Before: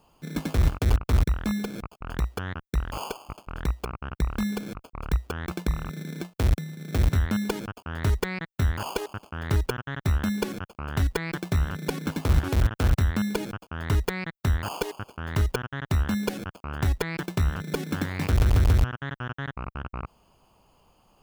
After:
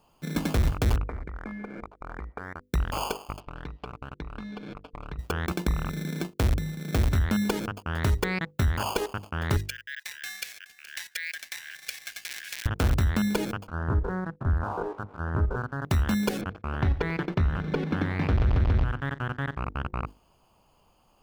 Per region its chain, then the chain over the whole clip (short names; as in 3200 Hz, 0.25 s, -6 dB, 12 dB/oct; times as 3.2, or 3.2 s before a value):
1.08–2.62 compressor 4:1, threshold -34 dBFS + brick-wall FIR low-pass 2400 Hz + bell 120 Hz -9.5 dB 1.6 oct
3.4–5.19 LPF 4000 Hz 24 dB/oct + compressor 4:1, threshold -38 dBFS + comb 6.8 ms, depth 33%
9.57–12.66 rippled Chebyshev high-pass 1600 Hz, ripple 3 dB + echo with dull and thin repeats by turns 0.211 s, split 1400 Hz, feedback 54%, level -10 dB + careless resampling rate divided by 2×, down none, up hold
13.68–15.85 stepped spectrum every 50 ms + steep low-pass 1600 Hz 72 dB/oct + notches 50/100/150/200 Hz
16.41–19.6 sample gate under -42 dBFS + air absorption 300 m + feedback echo 89 ms, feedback 34%, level -17 dB
whole clip: notches 50/100/150/200/250/300/350/400/450/500 Hz; sample leveller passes 1; compressor 2:1, threshold -22 dBFS